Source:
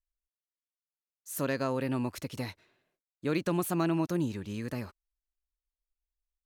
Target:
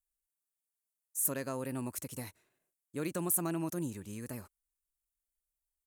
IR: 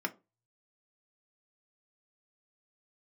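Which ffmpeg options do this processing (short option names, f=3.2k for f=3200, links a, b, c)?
-af "atempo=1.1,highshelf=f=6.2k:t=q:w=1.5:g=13,volume=-6.5dB"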